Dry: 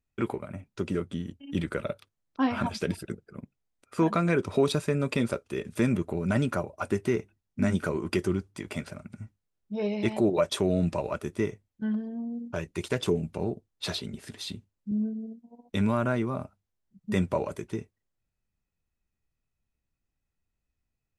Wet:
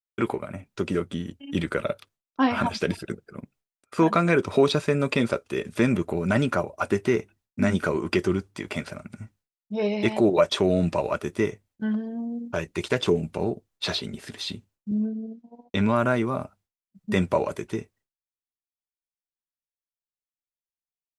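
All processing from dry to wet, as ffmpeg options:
ffmpeg -i in.wav -filter_complex "[0:a]asettb=1/sr,asplit=3[link_01][link_02][link_03];[link_01]atrim=end=15.054[link_04];[link_02]atrim=start=15.05:end=15.96,asetpts=PTS-STARTPTS,afade=type=in:duration=0.004:curve=qsin,afade=type=out:start_time=0.906:duration=0.004:curve=qsin,agate=range=-33dB:threshold=-56dB:ratio=3:release=100:detection=peak,lowpass=5600[link_05];[link_03]atrim=start=15.956[link_06];[link_04][link_05]acrossfade=duration=0.004:curve1=hsin:curve2=qsin[link_07];[link_07][link_06]acrossfade=duration=0.004:curve1=qsin:curve2=hsin,agate=range=-33dB:threshold=-57dB:ratio=3:detection=peak,acrossover=split=6100[link_08][link_09];[link_09]acompressor=threshold=-56dB:ratio=4:attack=1:release=60[link_10];[link_08][link_10]amix=inputs=2:normalize=0,lowshelf=frequency=270:gain=-6,volume=6.5dB" out.wav

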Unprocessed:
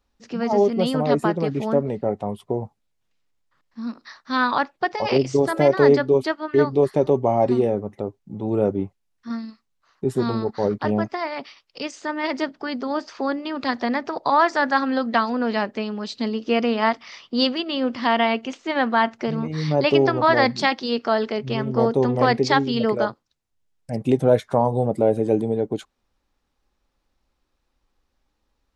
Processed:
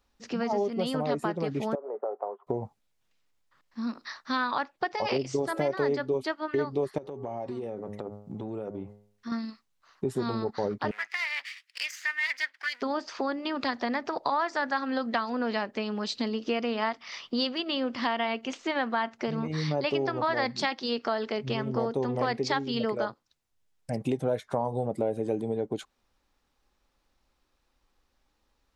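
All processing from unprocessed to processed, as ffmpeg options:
ffmpeg -i in.wav -filter_complex "[0:a]asettb=1/sr,asplit=3[link_01][link_02][link_03];[link_01]atrim=end=1.754[link_04];[link_02]atrim=start=1.75:end=2.47,asetpts=PTS-STARTPTS,afade=type=in:duration=0.004:curve=qsin,afade=type=out:start_time=0.716:duration=0.004:curve=qsin,acompressor=threshold=-22dB:ratio=12:attack=3.2:release=140:knee=1:detection=peak,acrusher=bits=6:mode=log:mix=0:aa=0.000001,asuperpass=centerf=730:order=8:qfactor=0.75[link_05];[link_03]atrim=start=2.466[link_06];[link_04][link_05]acrossfade=duration=0.004:curve1=hsin:curve2=qsin[link_07];[link_07][link_06]acrossfade=duration=0.004:curve1=qsin:curve2=hsin,asettb=1/sr,asplit=3[link_08][link_09][link_10];[link_08]atrim=end=6.984[link_11];[link_09]atrim=start=6.98:end=9.32,asetpts=PTS-STARTPTS,afade=type=in:duration=0.004:curve=qsin,afade=type=out:start_time=2.336:duration=0.004:curve=qsin,bandreject=frequency=103.2:width_type=h:width=4,bandreject=frequency=206.4:width_type=h:width=4,bandreject=frequency=309.6:width_type=h:width=4,bandreject=frequency=412.8:width_type=h:width=4,bandreject=frequency=516:width_type=h:width=4,bandreject=frequency=619.2:width_type=h:width=4,bandreject=frequency=722.4:width_type=h:width=4,bandreject=frequency=825.6:width_type=h:width=4,bandreject=frequency=928.8:width_type=h:width=4,bandreject=frequency=1032:width_type=h:width=4,bandreject=frequency=1135.2:width_type=h:width=4,bandreject=frequency=1238.4:width_type=h:width=4,bandreject=frequency=1341.6:width_type=h:width=4,bandreject=frequency=1444.8:width_type=h:width=4,bandreject=frequency=1548:width_type=h:width=4,bandreject=frequency=1651.2:width_type=h:width=4,bandreject=frequency=1754.4:width_type=h:width=4,bandreject=frequency=1857.6:width_type=h:width=4,bandreject=frequency=1960.8:width_type=h:width=4,bandreject=frequency=2064:width_type=h:width=4,acompressor=threshold=-31dB:ratio=10:attack=3.2:release=140:knee=1:detection=peak[link_12];[link_10]atrim=start=9.316[link_13];[link_11][link_12]acrossfade=duration=0.004:curve1=hsin:curve2=qsin[link_14];[link_14][link_13]acrossfade=duration=0.004:curve1=qsin:curve2=hsin,asettb=1/sr,asplit=3[link_15][link_16][link_17];[link_15]atrim=end=10.914[link_18];[link_16]atrim=start=10.91:end=12.82,asetpts=PTS-STARTPTS,afade=type=in:duration=0.004:curve=qsin,afade=type=out:start_time=1.906:duration=0.004:curve=qsin,aeval=exprs='if(lt(val(0),0),0.251*val(0),val(0))':channel_layout=same,highpass=frequency=1900:width_type=q:width=3.9[link_19];[link_17]atrim=start=12.816[link_20];[link_18][link_19]acrossfade=duration=0.004:curve1=hsin:curve2=qsin[link_21];[link_21][link_20]acrossfade=duration=0.004:curve1=qsin:curve2=hsin,lowshelf=frequency=470:gain=-4,acompressor=threshold=-30dB:ratio=3,volume=2dB" out.wav

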